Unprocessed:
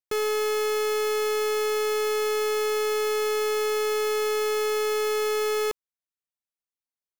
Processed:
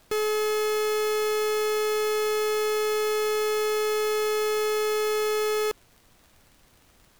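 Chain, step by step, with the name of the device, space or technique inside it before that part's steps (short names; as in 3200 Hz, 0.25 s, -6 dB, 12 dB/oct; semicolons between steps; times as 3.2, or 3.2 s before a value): vinyl LP (crackle; pink noise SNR 33 dB)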